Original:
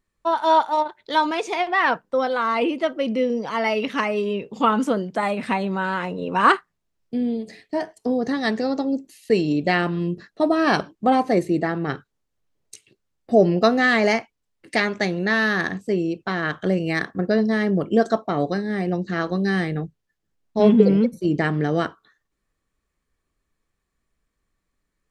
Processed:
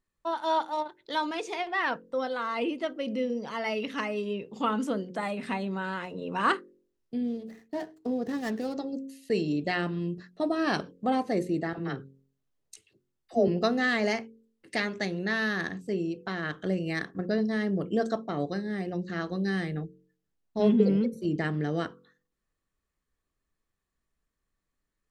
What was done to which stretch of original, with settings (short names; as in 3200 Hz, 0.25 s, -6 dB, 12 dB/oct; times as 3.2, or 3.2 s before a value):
7.24–8.77 median filter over 15 samples
11.73–13.48 dispersion lows, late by 49 ms, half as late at 580 Hz
whole clip: dynamic EQ 940 Hz, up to -4 dB, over -33 dBFS, Q 0.8; notch 2300 Hz, Q 23; de-hum 45.05 Hz, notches 12; gain -6.5 dB